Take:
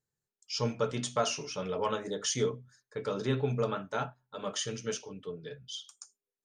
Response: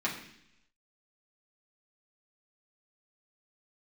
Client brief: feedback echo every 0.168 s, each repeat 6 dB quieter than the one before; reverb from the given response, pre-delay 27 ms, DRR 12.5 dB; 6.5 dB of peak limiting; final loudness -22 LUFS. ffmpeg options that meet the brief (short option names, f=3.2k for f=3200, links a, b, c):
-filter_complex "[0:a]alimiter=limit=-24dB:level=0:latency=1,aecho=1:1:168|336|504|672|840|1008:0.501|0.251|0.125|0.0626|0.0313|0.0157,asplit=2[a][b];[1:a]atrim=start_sample=2205,adelay=27[c];[b][c]afir=irnorm=-1:irlink=0,volume=-20dB[d];[a][d]amix=inputs=2:normalize=0,volume=13dB"